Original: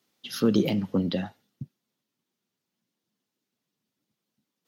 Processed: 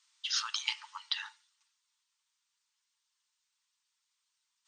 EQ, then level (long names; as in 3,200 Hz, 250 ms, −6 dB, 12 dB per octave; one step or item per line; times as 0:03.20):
linear-phase brick-wall band-pass 850–9,000 Hz
high-shelf EQ 4,200 Hz +10 dB
0.0 dB